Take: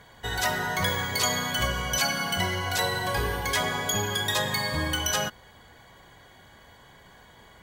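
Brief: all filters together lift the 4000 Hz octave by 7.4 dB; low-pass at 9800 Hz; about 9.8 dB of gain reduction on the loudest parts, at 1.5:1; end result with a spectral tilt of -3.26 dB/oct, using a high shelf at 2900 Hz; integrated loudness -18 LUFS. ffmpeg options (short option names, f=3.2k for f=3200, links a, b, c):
-af "lowpass=9.8k,highshelf=f=2.9k:g=4,equalizer=f=4k:t=o:g=6.5,acompressor=threshold=-46dB:ratio=1.5,volume=13dB"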